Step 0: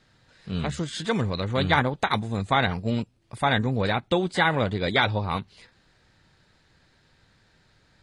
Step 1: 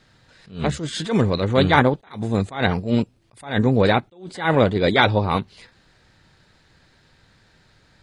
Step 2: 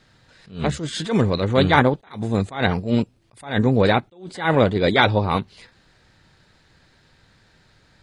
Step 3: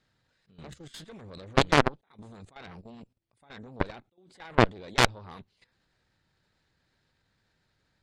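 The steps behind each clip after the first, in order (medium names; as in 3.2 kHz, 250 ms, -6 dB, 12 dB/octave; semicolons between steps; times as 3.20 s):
dynamic bell 380 Hz, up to +6 dB, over -39 dBFS, Q 0.77; attacks held to a fixed rise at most 150 dB/s; trim +5 dB
no audible change
level held to a coarse grid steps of 15 dB; Chebyshev shaper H 3 -19 dB, 4 -7 dB, 6 -21 dB, 7 -17 dB, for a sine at -1.5 dBFS; trim -3.5 dB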